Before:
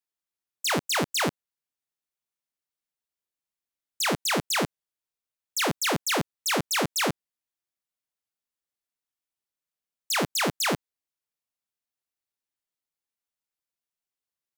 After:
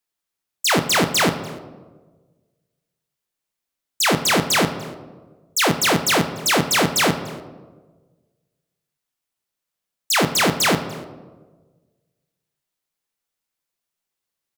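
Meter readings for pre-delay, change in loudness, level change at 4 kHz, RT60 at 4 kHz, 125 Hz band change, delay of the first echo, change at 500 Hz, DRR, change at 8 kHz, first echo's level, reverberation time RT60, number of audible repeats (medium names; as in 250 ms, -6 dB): 4 ms, +8.0 dB, +8.0 dB, 0.75 s, +9.0 dB, 293 ms, +8.5 dB, 8.0 dB, +8.0 dB, -23.5 dB, 1.4 s, 1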